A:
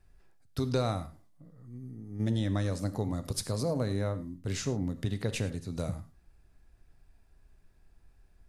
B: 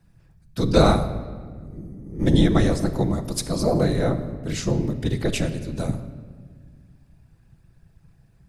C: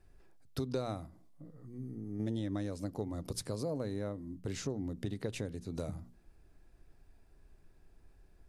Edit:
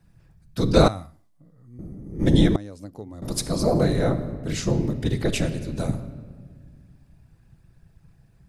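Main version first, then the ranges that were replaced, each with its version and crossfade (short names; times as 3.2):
B
0.88–1.79 from A
2.56–3.22 from C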